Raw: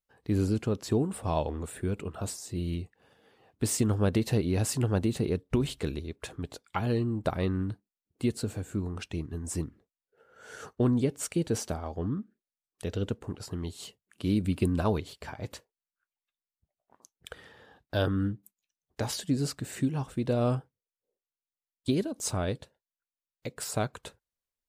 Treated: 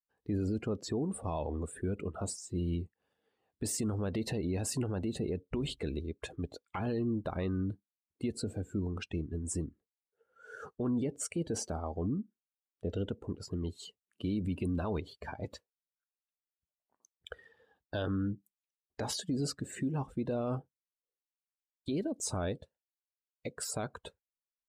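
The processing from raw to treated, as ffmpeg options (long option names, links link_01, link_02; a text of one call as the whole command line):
ffmpeg -i in.wav -filter_complex "[0:a]asettb=1/sr,asplit=3[link_01][link_02][link_03];[link_01]atrim=end=12.044[link_04];[link_02]atrim=start=12.04:end=12.9,asetpts=PTS-STARTPTS,afade=type=in:duration=0.004:curve=qsin,afade=type=out:start_time=0.856:duration=0.004:curve=qsin,lowpass=frequency=1100:poles=1[link_05];[link_03]atrim=start=12.896[link_06];[link_04][link_05]acrossfade=duration=0.004:curve1=hsin:curve2=qsin[link_07];[link_07][link_06]acrossfade=duration=0.004:curve1=qsin:curve2=hsin,afftdn=noise_reduction=17:noise_floor=-43,equalizer=frequency=120:width=3:gain=-6,alimiter=level_in=2dB:limit=-24dB:level=0:latency=1:release=45,volume=-2dB" out.wav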